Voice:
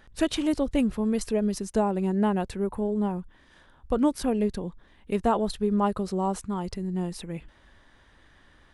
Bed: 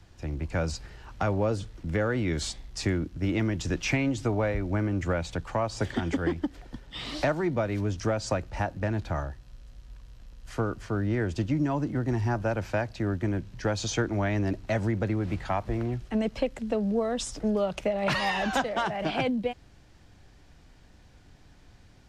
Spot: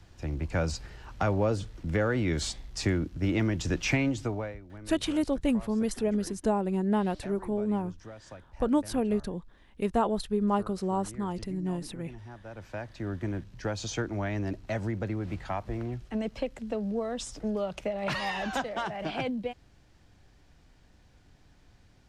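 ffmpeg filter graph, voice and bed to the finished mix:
ffmpeg -i stem1.wav -i stem2.wav -filter_complex "[0:a]adelay=4700,volume=-2.5dB[link_01];[1:a]volume=14dB,afade=type=out:start_time=4.02:duration=0.59:silence=0.11885,afade=type=in:start_time=12.43:duration=0.78:silence=0.199526[link_02];[link_01][link_02]amix=inputs=2:normalize=0" out.wav

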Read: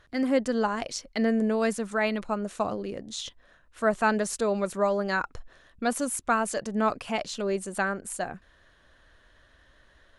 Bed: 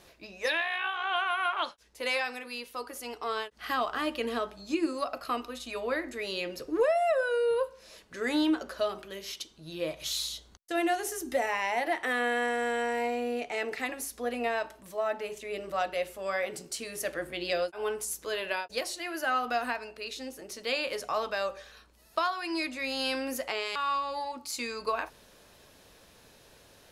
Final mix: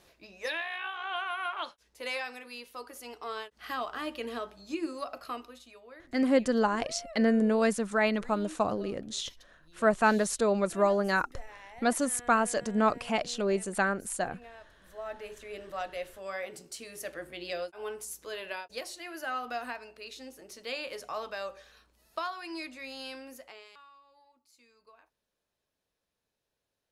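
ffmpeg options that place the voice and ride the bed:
ffmpeg -i stem1.wav -i stem2.wav -filter_complex "[0:a]adelay=6000,volume=0dB[link_01];[1:a]volume=9dB,afade=type=out:start_time=5.24:duration=0.56:silence=0.177828,afade=type=in:start_time=14.68:duration=0.61:silence=0.199526,afade=type=out:start_time=22.36:duration=1.55:silence=0.0749894[link_02];[link_01][link_02]amix=inputs=2:normalize=0" out.wav

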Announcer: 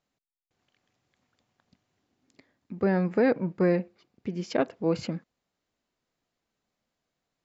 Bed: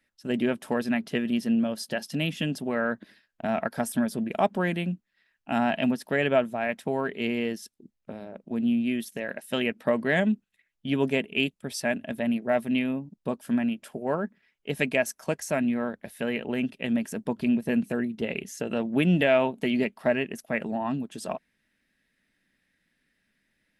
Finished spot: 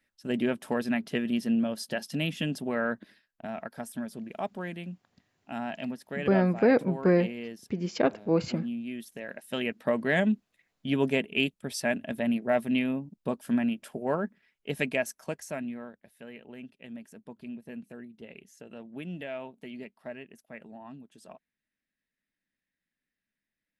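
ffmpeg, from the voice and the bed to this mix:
ffmpeg -i stem1.wav -i stem2.wav -filter_complex "[0:a]adelay=3450,volume=1dB[link_01];[1:a]volume=7dB,afade=type=out:start_time=3.01:duration=0.51:silence=0.398107,afade=type=in:start_time=8.88:duration=1.38:silence=0.354813,afade=type=out:start_time=14.42:duration=1.59:silence=0.16788[link_02];[link_01][link_02]amix=inputs=2:normalize=0" out.wav

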